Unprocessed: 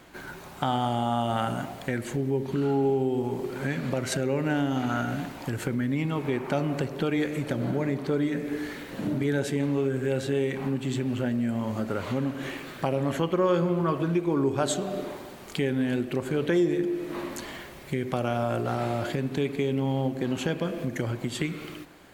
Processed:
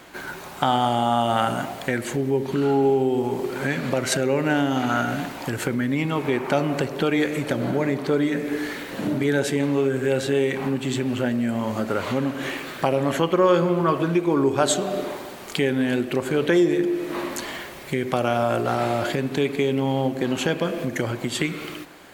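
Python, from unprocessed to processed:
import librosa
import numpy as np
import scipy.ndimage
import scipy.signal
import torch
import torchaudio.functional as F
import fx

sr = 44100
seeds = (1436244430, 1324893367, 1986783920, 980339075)

y = fx.low_shelf(x, sr, hz=220.0, db=-8.5)
y = y * 10.0 ** (7.5 / 20.0)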